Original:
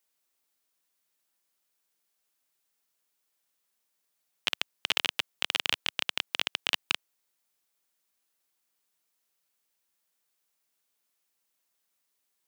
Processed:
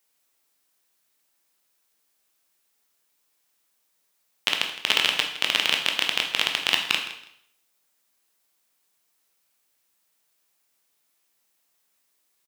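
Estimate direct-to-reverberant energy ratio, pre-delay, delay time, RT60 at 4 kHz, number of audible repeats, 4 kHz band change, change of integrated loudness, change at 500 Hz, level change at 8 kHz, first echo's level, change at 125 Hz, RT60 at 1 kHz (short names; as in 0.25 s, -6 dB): 2.0 dB, 7 ms, 0.163 s, 0.70 s, 2, +7.5 dB, +7.5 dB, +7.5 dB, +7.5 dB, -15.5 dB, +7.0 dB, 0.70 s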